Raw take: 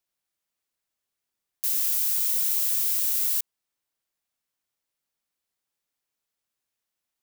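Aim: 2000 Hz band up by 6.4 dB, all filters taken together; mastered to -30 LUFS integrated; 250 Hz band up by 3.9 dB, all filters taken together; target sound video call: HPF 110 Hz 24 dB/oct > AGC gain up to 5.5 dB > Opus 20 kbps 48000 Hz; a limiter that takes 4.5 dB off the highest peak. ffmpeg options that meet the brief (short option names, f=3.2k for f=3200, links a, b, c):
-af "equalizer=f=250:t=o:g=5,equalizer=f=2k:t=o:g=8,alimiter=limit=-16dB:level=0:latency=1,highpass=f=110:w=0.5412,highpass=f=110:w=1.3066,dynaudnorm=m=5.5dB,volume=-4dB" -ar 48000 -c:a libopus -b:a 20k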